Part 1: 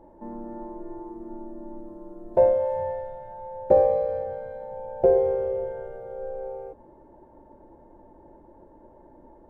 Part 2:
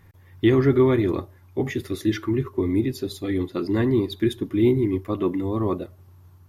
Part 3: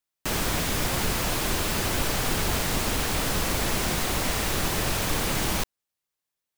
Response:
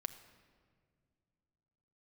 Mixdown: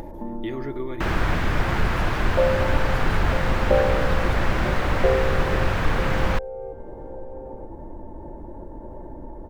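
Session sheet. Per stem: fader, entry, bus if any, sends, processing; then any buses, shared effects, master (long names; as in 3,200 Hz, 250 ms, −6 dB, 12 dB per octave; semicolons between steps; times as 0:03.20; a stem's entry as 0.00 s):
−4.0 dB, 0.00 s, no send, echo send −13 dB, no processing
−12.5 dB, 0.00 s, no send, no echo send, high-pass filter 610 Hz 6 dB per octave
−2.0 dB, 0.75 s, no send, no echo send, drawn EQ curve 260 Hz 0 dB, 1,600 Hz +8 dB, 10,000 Hz −19 dB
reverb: not used
echo: single-tap delay 945 ms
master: low-shelf EQ 170 Hz +11.5 dB; upward compression, threshold −23 dBFS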